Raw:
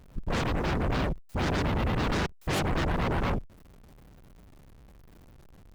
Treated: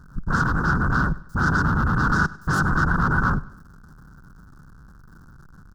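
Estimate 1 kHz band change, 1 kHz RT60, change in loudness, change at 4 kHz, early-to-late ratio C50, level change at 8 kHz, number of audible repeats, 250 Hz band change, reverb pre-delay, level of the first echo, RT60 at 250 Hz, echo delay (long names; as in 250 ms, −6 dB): +9.5 dB, no reverb audible, +7.5 dB, −4.0 dB, no reverb audible, +2.5 dB, 2, +6.0 dB, no reverb audible, −20.0 dB, no reverb audible, 99 ms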